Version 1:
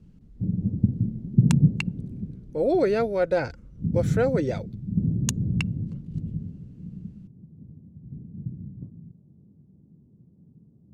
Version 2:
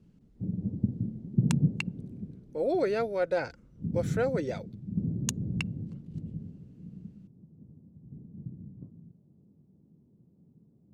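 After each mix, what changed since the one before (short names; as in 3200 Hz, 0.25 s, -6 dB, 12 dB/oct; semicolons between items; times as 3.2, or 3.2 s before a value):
speech -3.5 dB; master: add low shelf 220 Hz -10.5 dB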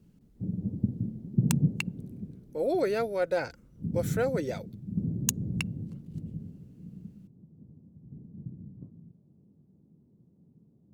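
master: remove air absorption 59 m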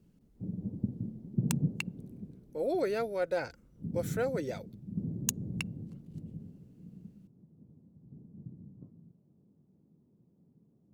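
speech -3.5 dB; background: add tilt +2 dB/oct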